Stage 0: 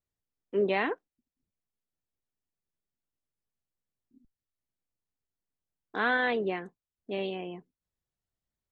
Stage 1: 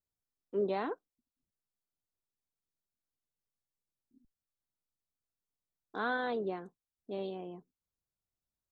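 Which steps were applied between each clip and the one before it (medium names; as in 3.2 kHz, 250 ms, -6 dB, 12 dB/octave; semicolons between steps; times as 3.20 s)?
high-order bell 2.3 kHz -11.5 dB 1 oct; trim -5 dB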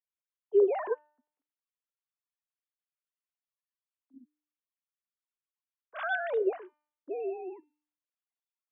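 formants replaced by sine waves; de-hum 299.4 Hz, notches 35; trim +6 dB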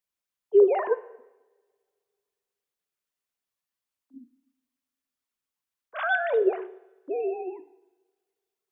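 two-slope reverb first 0.97 s, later 2.5 s, from -25 dB, DRR 14 dB; trim +6 dB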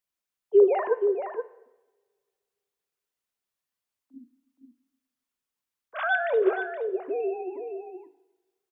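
echo from a far wall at 81 m, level -7 dB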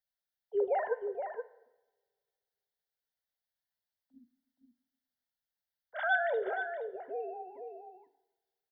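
static phaser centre 1.7 kHz, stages 8; trim -3 dB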